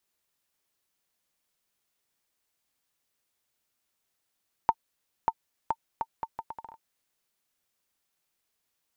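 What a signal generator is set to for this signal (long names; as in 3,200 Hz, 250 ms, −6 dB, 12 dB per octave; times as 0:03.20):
bouncing ball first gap 0.59 s, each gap 0.72, 904 Hz, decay 52 ms −9.5 dBFS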